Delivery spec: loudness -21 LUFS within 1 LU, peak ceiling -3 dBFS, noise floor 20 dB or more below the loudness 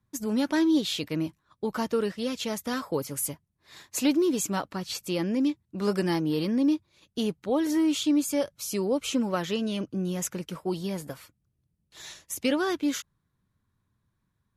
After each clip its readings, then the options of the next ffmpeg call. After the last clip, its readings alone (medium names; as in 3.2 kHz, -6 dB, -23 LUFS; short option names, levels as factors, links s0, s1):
loudness -28.5 LUFS; peak level -13.5 dBFS; loudness target -21.0 LUFS
-> -af "volume=2.37"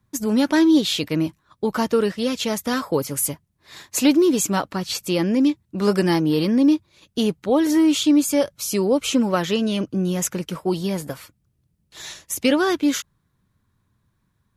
loudness -21.0 LUFS; peak level -6.0 dBFS; noise floor -69 dBFS